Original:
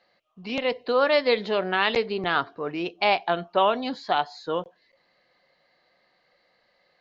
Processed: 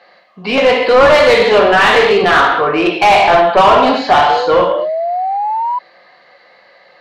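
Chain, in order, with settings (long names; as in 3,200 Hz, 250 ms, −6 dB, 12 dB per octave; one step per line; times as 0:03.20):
reverb whose tail is shaped and stops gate 290 ms falling, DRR −0.5 dB
sound drawn into the spectrogram rise, 0:04.29–0:05.79, 460–1,000 Hz −35 dBFS
mid-hump overdrive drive 25 dB, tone 1,600 Hz, clips at −1.5 dBFS
level +3 dB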